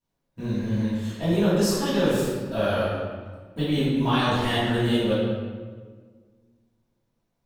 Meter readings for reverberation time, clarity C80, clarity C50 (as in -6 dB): 1.6 s, 0.5 dB, -2.5 dB